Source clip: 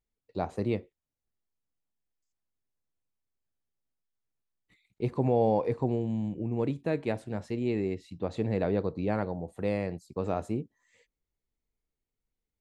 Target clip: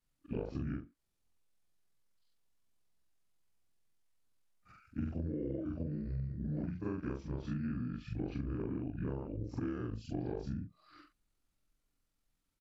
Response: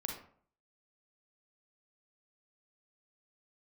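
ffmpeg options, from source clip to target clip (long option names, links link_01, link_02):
-af "afftfilt=real='re':imag='-im':win_size=4096:overlap=0.75,asetrate=27781,aresample=44100,atempo=1.5874,acompressor=threshold=-45dB:ratio=16,volume=11dB"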